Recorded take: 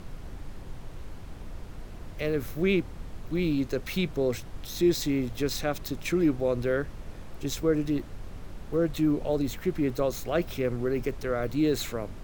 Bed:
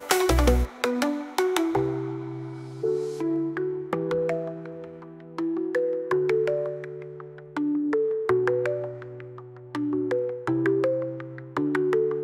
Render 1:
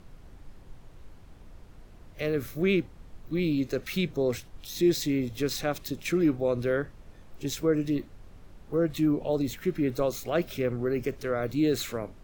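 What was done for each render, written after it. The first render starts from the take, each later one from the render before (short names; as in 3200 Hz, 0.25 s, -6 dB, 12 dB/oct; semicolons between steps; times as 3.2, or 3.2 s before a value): noise print and reduce 9 dB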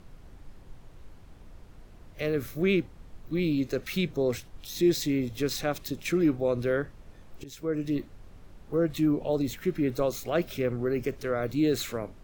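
7.44–7.99 fade in, from -17 dB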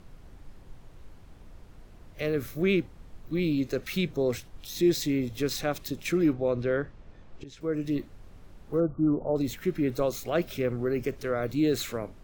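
6.33–7.61 air absorption 98 m; 8.8–9.36 brick-wall FIR low-pass 1500 Hz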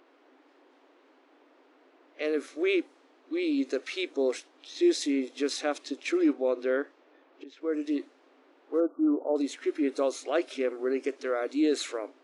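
low-pass opened by the level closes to 2700 Hz, open at -24 dBFS; FFT band-pass 250–11000 Hz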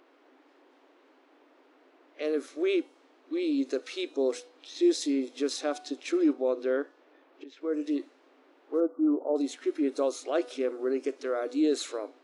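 de-hum 245.9 Hz, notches 21; dynamic EQ 2100 Hz, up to -7 dB, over -50 dBFS, Q 1.5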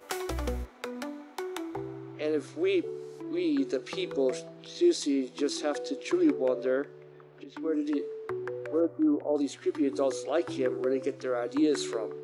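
add bed -12.5 dB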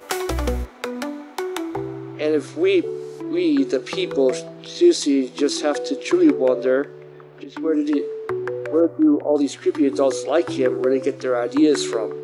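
gain +9.5 dB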